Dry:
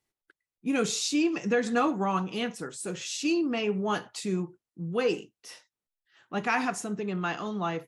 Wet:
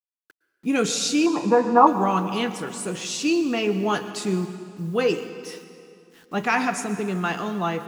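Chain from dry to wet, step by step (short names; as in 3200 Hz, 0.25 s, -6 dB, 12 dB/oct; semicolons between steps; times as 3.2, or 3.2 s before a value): bit-crush 10-bit; 1.26–1.87 synth low-pass 960 Hz, resonance Q 10; on a send: reverb RT60 2.4 s, pre-delay 0.106 s, DRR 11 dB; on the sum: gain +5 dB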